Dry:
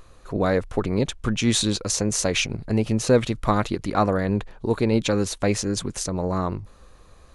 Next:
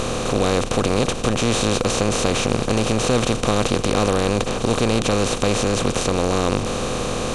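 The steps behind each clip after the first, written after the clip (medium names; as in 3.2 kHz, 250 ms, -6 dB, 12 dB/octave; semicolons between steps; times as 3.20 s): spectral levelling over time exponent 0.2; bass shelf 190 Hz +5.5 dB; trim -7 dB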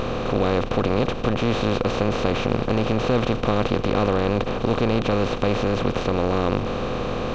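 Gaussian low-pass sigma 2.2 samples; trim -1.5 dB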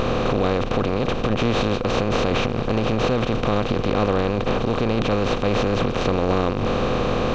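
peak limiter -14.5 dBFS, peak gain reduction 10.5 dB; trim +4.5 dB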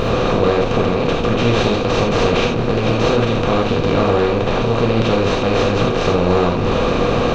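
gated-style reverb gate 110 ms flat, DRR -1 dB; trim +2 dB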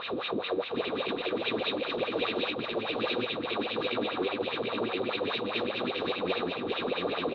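wah-wah 4.9 Hz 270–2600 Hz, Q 3.9; resonant low-pass 3.8 kHz, resonance Q 8.2; delay 743 ms -3.5 dB; trim -7.5 dB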